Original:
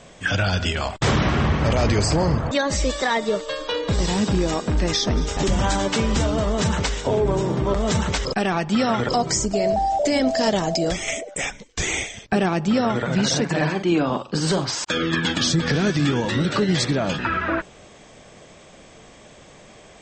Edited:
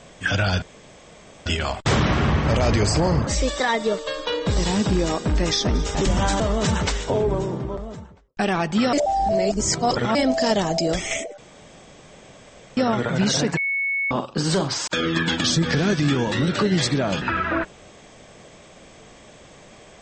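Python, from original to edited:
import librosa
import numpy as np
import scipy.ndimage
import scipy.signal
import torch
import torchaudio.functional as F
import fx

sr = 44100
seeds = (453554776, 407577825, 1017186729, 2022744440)

y = fx.studio_fade_out(x, sr, start_s=6.88, length_s=1.46)
y = fx.edit(y, sr, fx.insert_room_tone(at_s=0.62, length_s=0.84),
    fx.cut(start_s=2.43, length_s=0.26),
    fx.cut(start_s=5.82, length_s=0.55),
    fx.reverse_span(start_s=8.9, length_s=1.22),
    fx.room_tone_fill(start_s=11.35, length_s=1.39),
    fx.bleep(start_s=13.54, length_s=0.54, hz=2210.0, db=-20.5), tone=tone)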